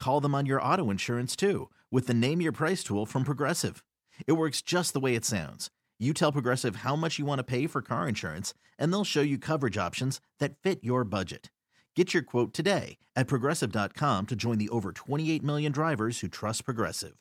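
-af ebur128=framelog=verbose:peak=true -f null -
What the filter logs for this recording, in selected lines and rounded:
Integrated loudness:
  I:         -29.6 LUFS
  Threshold: -39.8 LUFS
Loudness range:
  LRA:         1.7 LU
  Threshold: -49.8 LUFS
  LRA low:   -30.6 LUFS
  LRA high:  -28.9 LUFS
True peak:
  Peak:      -11.2 dBFS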